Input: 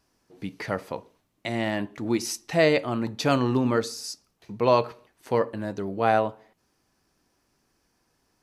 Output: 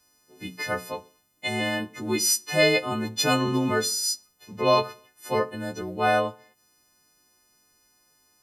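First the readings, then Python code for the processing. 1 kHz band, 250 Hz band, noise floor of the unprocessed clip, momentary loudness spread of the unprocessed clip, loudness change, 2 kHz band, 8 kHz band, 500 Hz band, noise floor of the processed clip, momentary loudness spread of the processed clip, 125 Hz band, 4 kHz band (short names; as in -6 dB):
+0.5 dB, -2.0 dB, -72 dBFS, 15 LU, +1.0 dB, +4.5 dB, +11.0 dB, -1.0 dB, -66 dBFS, 13 LU, -2.0 dB, +7.5 dB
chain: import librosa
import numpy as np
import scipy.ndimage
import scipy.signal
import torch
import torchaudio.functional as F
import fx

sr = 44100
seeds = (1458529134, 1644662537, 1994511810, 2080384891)

y = fx.freq_snap(x, sr, grid_st=3)
y = fx.hum_notches(y, sr, base_hz=60, count=3)
y = y * librosa.db_to_amplitude(-1.0)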